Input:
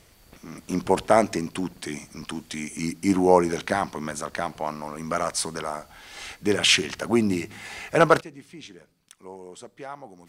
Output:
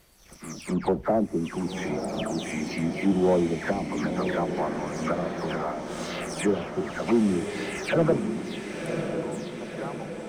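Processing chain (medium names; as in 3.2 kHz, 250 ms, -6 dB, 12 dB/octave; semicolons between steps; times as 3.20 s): delay that grows with frequency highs early, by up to 250 ms; low-pass that closes with the level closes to 550 Hz, closed at -20.5 dBFS; dynamic bell 1.1 kHz, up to -4 dB, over -38 dBFS, Q 0.78; waveshaping leveller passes 1; echo that smears into a reverb 1043 ms, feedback 57%, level -6 dB; trim -1.5 dB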